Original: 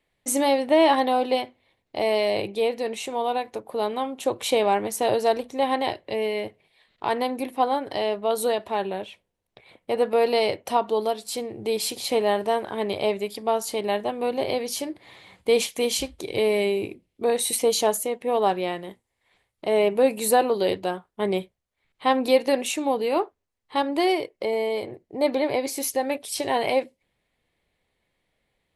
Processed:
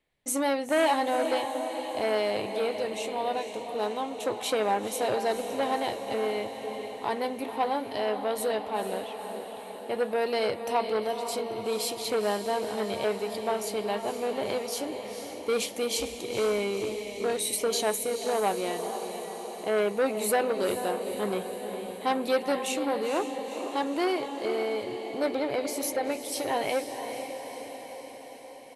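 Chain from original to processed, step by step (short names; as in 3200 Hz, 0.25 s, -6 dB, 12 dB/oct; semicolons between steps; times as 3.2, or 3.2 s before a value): doubler 14 ms -12.5 dB; diffused feedback echo 0.483 s, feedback 64%, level -8.5 dB; core saturation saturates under 1100 Hz; gain -4.5 dB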